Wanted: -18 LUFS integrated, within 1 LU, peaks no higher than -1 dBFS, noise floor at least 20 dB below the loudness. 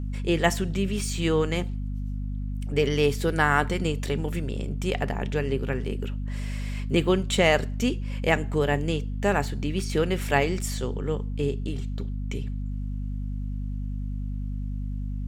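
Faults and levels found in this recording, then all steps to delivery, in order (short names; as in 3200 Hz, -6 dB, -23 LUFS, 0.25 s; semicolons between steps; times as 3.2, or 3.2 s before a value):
hum 50 Hz; harmonics up to 250 Hz; hum level -28 dBFS; loudness -27.5 LUFS; peak -7.0 dBFS; loudness target -18.0 LUFS
-> de-hum 50 Hz, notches 5; gain +9.5 dB; limiter -1 dBFS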